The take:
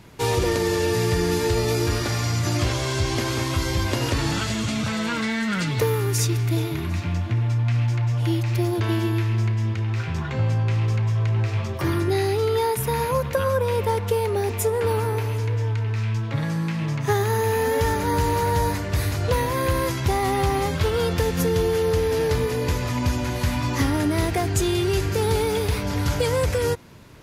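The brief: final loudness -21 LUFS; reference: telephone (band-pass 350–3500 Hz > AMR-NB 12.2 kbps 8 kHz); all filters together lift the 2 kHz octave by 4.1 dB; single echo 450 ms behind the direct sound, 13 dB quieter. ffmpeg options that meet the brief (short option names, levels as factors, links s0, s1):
-af "highpass=350,lowpass=3500,equalizer=f=2000:t=o:g=5.5,aecho=1:1:450:0.224,volume=2" -ar 8000 -c:a libopencore_amrnb -b:a 12200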